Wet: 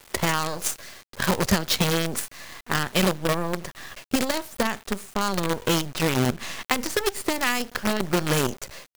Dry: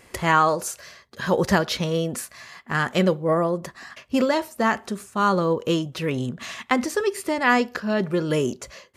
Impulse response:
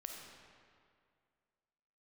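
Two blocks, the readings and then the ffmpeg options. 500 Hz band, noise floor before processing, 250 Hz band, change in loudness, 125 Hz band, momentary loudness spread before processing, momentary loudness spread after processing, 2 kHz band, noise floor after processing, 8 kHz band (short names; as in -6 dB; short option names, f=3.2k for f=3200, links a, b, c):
-4.5 dB, -53 dBFS, -2.5 dB, -2.0 dB, -0.5 dB, 13 LU, 10 LU, -1.5 dB, -53 dBFS, +6.0 dB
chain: -filter_complex "[0:a]acrossover=split=150|3000[a][b][c];[b]acompressor=threshold=-27dB:ratio=8[d];[a][d][c]amix=inputs=3:normalize=0,acrusher=bits=5:dc=4:mix=0:aa=0.000001,volume=5dB"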